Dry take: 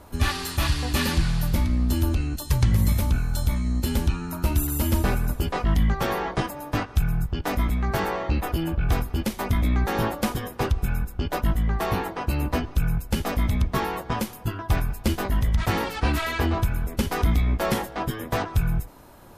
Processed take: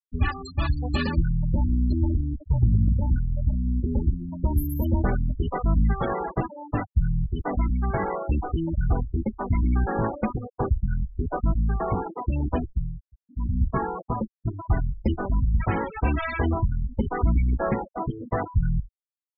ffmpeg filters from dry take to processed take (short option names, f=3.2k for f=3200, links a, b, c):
-filter_complex "[0:a]asettb=1/sr,asplit=3[a][b][c];[a]atrim=end=2.044[d];[b]atrim=start=2.04:end=4.46,asetpts=PTS-STARTPTS,afade=t=in:d=0.004:c=qsin,afade=t=out:st=2.416:d=0.004:c=qsin,highshelf=f=2.8k:g=-7.5[e];[c]atrim=start=4.456[f];[d][e]acrossfade=d=0.004:c1=hsin:c2=qsin[g];[g][f]acrossfade=d=0.004:c1=qsin:c2=hsin,asplit=3[h][i][j];[h]atrim=end=13.03,asetpts=PTS-STARTPTS,afade=t=out:st=12.63:d=0.4:silence=0.0944061[k];[i]atrim=start=13.03:end=13.21,asetpts=PTS-STARTPTS,volume=-20.5dB[l];[j]atrim=start=13.21,asetpts=PTS-STARTPTS,afade=t=in:d=0.4:silence=0.0944061[m];[k][l][m]concat=n=3:v=0:a=1,afftfilt=real='re*gte(hypot(re,im),0.0891)':imag='im*gte(hypot(re,im),0.0891)':win_size=1024:overlap=0.75"